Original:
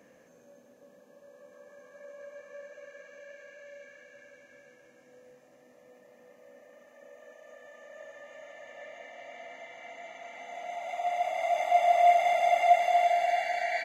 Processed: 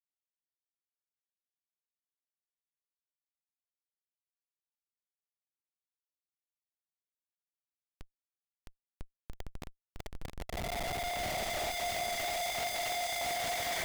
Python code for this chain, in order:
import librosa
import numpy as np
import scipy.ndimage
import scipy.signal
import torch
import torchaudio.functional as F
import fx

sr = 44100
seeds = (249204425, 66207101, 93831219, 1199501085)

p1 = fx.bass_treble(x, sr, bass_db=-13, treble_db=-3)
p2 = fx.leveller(p1, sr, passes=1)
p3 = fx.schmitt(p2, sr, flips_db=-33.0)
p4 = fx.tilt_shelf(p3, sr, db=-6.5, hz=1400.0)
p5 = p4 + fx.echo_feedback(p4, sr, ms=662, feedback_pct=55, wet_db=-4.0, dry=0)
p6 = np.clip(p5, -10.0 ** (-31.0 / 20.0), 10.0 ** (-31.0 / 20.0))
y = p6 * 10.0 ** (-1.5 / 20.0)